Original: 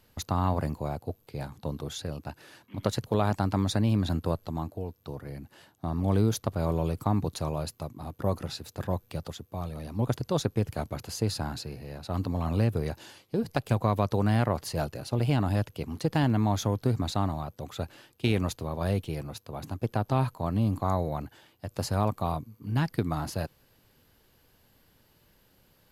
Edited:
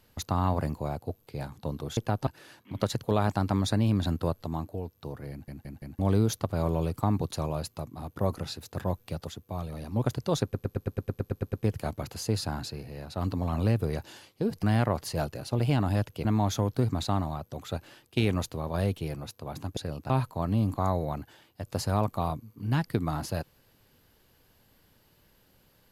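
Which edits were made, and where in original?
0:01.97–0:02.30: swap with 0:19.84–0:20.14
0:05.34: stutter in place 0.17 s, 4 plays
0:10.46: stutter 0.11 s, 11 plays
0:13.56–0:14.23: remove
0:15.85–0:16.32: remove

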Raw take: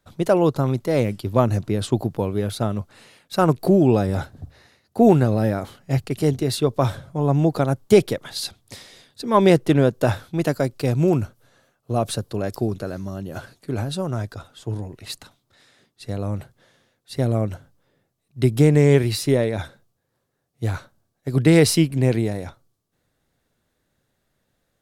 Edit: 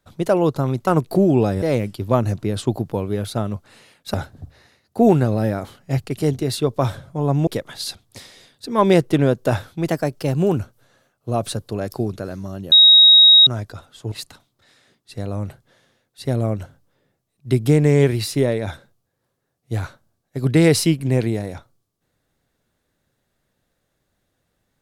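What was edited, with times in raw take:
0:03.39–0:04.14: move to 0:00.87
0:07.47–0:08.03: remove
0:10.44–0:11.19: play speed 109%
0:13.34–0:14.09: beep over 3,790 Hz −6 dBFS
0:14.74–0:15.03: remove

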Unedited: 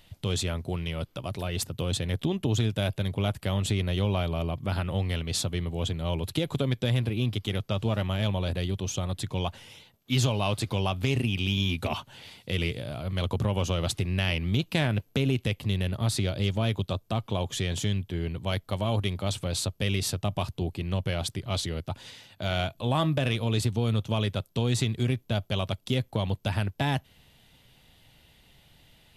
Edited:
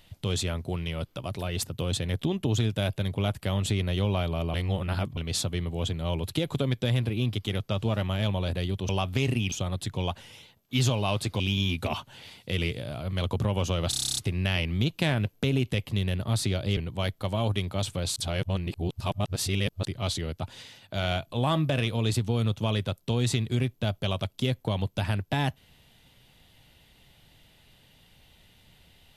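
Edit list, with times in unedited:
0:04.54–0:05.17: reverse
0:10.77–0:11.40: move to 0:08.89
0:13.90: stutter 0.03 s, 10 plays
0:16.50–0:18.25: remove
0:19.64–0:21.33: reverse

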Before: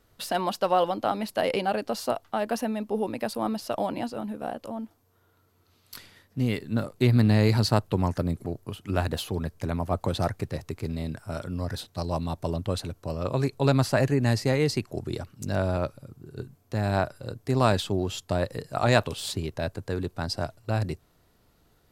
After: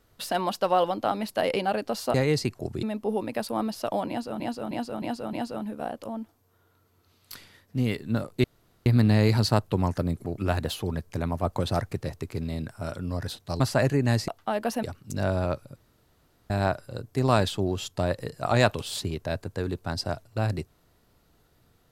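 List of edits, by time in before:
0:02.14–0:02.69: swap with 0:14.46–0:15.15
0:03.95–0:04.26: repeat, 5 plays
0:07.06: splice in room tone 0.42 s
0:08.58–0:08.86: remove
0:12.08–0:13.78: remove
0:16.08–0:16.82: fill with room tone

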